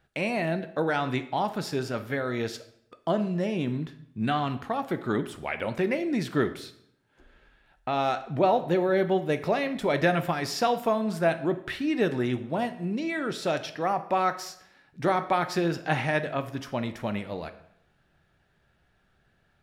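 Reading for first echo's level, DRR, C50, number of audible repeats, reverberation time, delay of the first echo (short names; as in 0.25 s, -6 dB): none, 9.5 dB, 13.0 dB, none, 0.75 s, none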